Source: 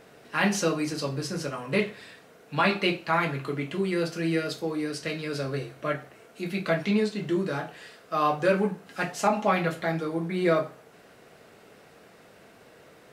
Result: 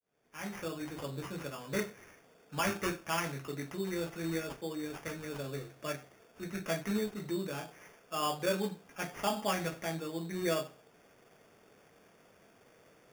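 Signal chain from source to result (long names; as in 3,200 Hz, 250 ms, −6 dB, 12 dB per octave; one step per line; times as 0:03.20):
fade in at the beginning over 1.15 s
decimation without filtering 11×
level −9 dB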